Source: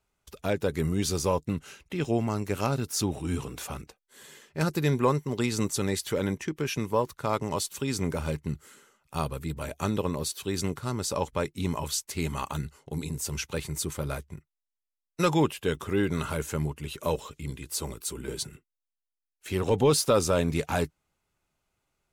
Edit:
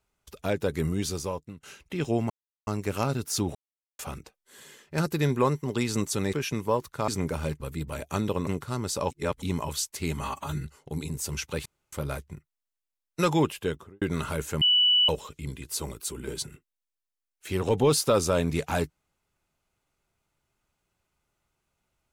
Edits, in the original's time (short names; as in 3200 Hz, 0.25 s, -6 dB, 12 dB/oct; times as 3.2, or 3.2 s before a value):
0.86–1.63 fade out, to -20.5 dB
2.3 insert silence 0.37 s
3.18–3.62 mute
5.96–6.58 cut
7.33–7.91 cut
8.43–9.29 cut
10.16–10.62 cut
11.26–11.57 reverse
12.36–12.65 stretch 1.5×
13.66–13.93 room tone
15.58–16.02 studio fade out
16.62–17.09 bleep 2960 Hz -17.5 dBFS